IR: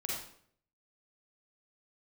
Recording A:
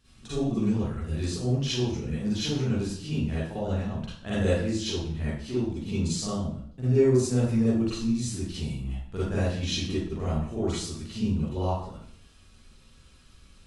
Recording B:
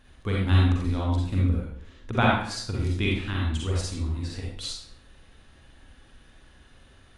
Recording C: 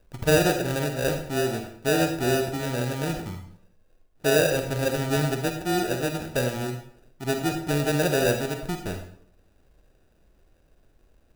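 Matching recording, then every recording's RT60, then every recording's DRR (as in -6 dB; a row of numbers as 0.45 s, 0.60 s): B; 0.60 s, 0.60 s, 0.60 s; -11.0 dB, -4.0 dB, 5.0 dB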